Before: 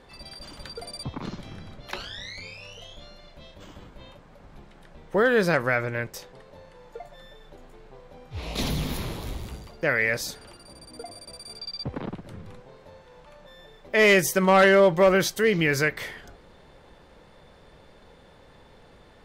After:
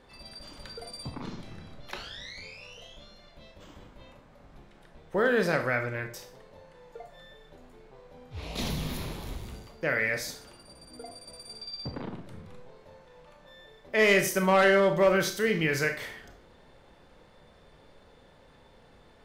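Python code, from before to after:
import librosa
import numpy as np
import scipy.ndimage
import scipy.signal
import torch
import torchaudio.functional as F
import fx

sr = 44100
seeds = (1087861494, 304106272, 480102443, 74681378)

y = fx.rev_schroeder(x, sr, rt60_s=0.42, comb_ms=25, drr_db=6.0)
y = F.gain(torch.from_numpy(y), -5.0).numpy()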